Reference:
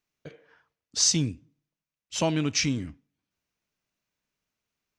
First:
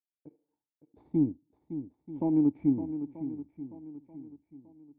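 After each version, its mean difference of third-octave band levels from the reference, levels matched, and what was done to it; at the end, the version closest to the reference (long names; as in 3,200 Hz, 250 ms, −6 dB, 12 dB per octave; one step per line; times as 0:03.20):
12.5 dB: brickwall limiter −16.5 dBFS, peak gain reduction 6.5 dB
power curve on the samples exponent 1.4
formant resonators in series u
on a send: feedback echo with a long and a short gap by turns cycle 935 ms, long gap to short 1.5 to 1, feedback 32%, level −11 dB
on the sum: level +8.5 dB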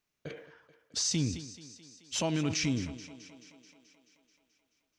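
6.0 dB: in parallel at −3 dB: downward compressor, threshold −35 dBFS, peak gain reduction 16 dB
on the sum: brickwall limiter −17.5 dBFS, peak gain reduction 8.5 dB
feedback echo with a high-pass in the loop 216 ms, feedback 67%, high-pass 160 Hz, level −15 dB
level that may fall only so fast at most 86 dB per second
level −4 dB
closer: second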